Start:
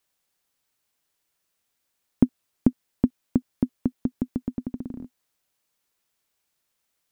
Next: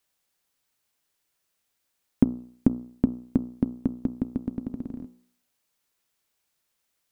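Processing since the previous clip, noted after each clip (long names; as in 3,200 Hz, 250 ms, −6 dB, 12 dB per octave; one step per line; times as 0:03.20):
hum removal 61.15 Hz, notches 22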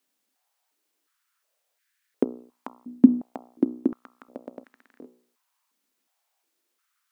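high-pass on a step sequencer 2.8 Hz 250–1,700 Hz
level −1 dB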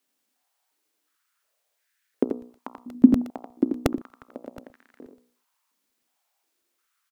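single-tap delay 86 ms −6 dB
regular buffer underruns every 0.12 s, samples 64, repeat, from 0:00.74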